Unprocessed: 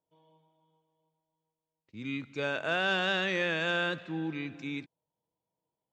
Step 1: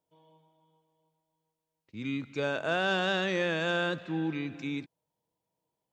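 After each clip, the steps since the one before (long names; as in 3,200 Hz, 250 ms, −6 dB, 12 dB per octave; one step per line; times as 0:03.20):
dynamic equaliser 2,300 Hz, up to −6 dB, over −44 dBFS, Q 0.86
level +3 dB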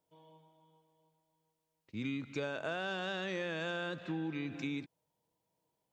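downward compressor, threshold −36 dBFS, peak gain reduction 12 dB
level +1.5 dB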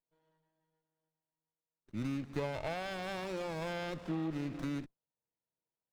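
noise reduction from a noise print of the clip's start 17 dB
windowed peak hold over 17 samples
level +2 dB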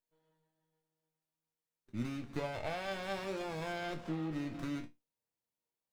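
resonators tuned to a chord D#2 major, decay 0.2 s
level +9 dB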